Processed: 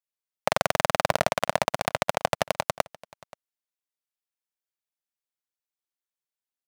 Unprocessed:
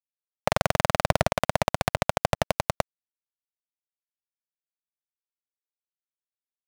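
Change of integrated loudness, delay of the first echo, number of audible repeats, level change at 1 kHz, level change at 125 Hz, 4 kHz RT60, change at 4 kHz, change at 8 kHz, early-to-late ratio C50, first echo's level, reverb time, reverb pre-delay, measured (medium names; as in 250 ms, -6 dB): 0.0 dB, 529 ms, 1, +0.5 dB, -7.5 dB, no reverb, +1.0 dB, +1.0 dB, no reverb, -22.5 dB, no reverb, no reverb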